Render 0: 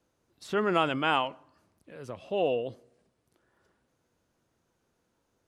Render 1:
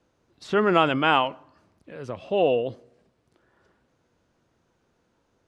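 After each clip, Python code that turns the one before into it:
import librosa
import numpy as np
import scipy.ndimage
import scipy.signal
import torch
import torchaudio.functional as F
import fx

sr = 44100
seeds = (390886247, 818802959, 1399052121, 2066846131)

y = fx.air_absorb(x, sr, metres=71.0)
y = F.gain(torch.from_numpy(y), 6.5).numpy()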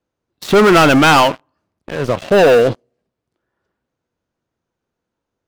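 y = fx.leveller(x, sr, passes=5)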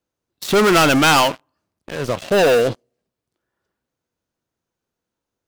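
y = fx.high_shelf(x, sr, hz=3700.0, db=9.0)
y = F.gain(torch.from_numpy(y), -5.0).numpy()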